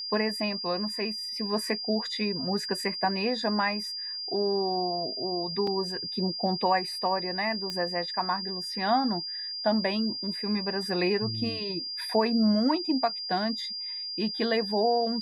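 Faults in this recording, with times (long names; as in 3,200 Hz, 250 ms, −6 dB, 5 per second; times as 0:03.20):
whistle 4,800 Hz −33 dBFS
0:05.67: drop-out 3.5 ms
0:07.70: click −19 dBFS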